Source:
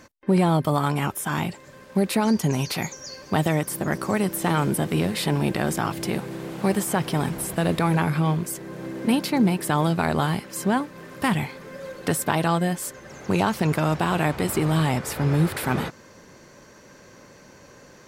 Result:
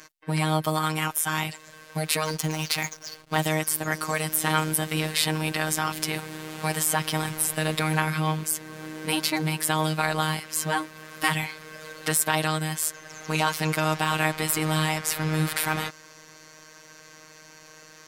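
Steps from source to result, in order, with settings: 2.25–3.42 s: hysteresis with a dead band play -32.5 dBFS; robot voice 156 Hz; tilt shelf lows -6.5 dB, about 870 Hz; trim +1 dB

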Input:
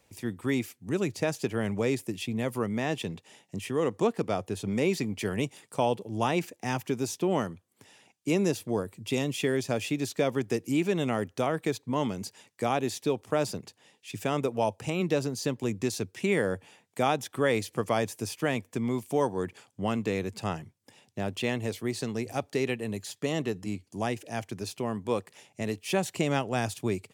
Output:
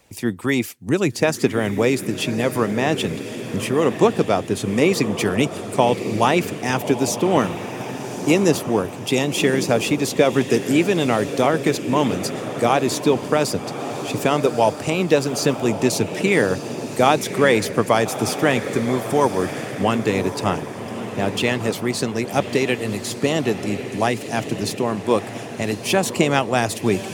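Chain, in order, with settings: echo that smears into a reverb 1180 ms, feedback 51%, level -8.5 dB; harmonic-percussive split percussive +6 dB; trim +6 dB

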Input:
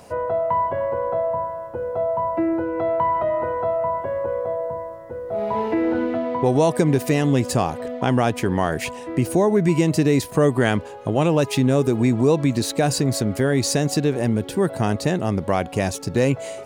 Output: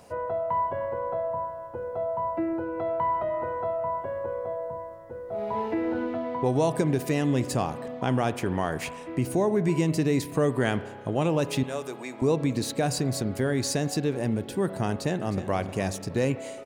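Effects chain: 11.63–12.22 s: high-pass 650 Hz 12 dB/octave; spring tank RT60 1.5 s, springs 31 ms, chirp 75 ms, DRR 13 dB; 14.90–15.51 s: echo throw 310 ms, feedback 30%, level -12 dB; trim -6.5 dB

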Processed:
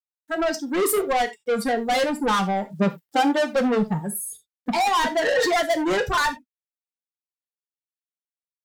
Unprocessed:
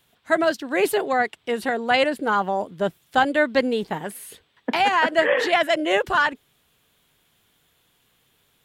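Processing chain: expander on every frequency bin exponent 2; peaking EQ 2.8 kHz -13.5 dB 0.57 oct; peak limiter -17 dBFS, peak gain reduction 7.5 dB; level rider gain up to 16 dB; saturation -19.5 dBFS, distortion -6 dB; 2.72–3.55 s: resonant high-pass 220 Hz -> 450 Hz, resonance Q 3.4; bit crusher 11-bit; gated-style reverb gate 110 ms falling, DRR 7 dB

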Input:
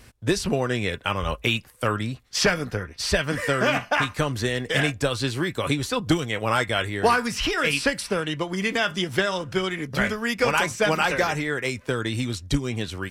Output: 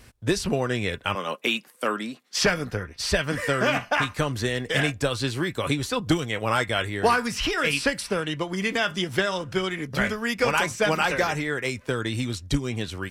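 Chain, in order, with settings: 1.15–2.38 s: steep high-pass 190 Hz 36 dB/octave; trim -1 dB

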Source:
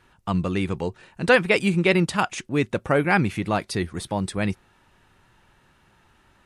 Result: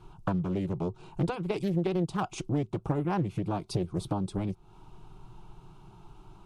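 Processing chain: tilt EQ -2.5 dB/octave; compression 16:1, threshold -28 dBFS, peak gain reduction 19 dB; static phaser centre 360 Hz, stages 8; loudspeaker Doppler distortion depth 0.67 ms; trim +5.5 dB

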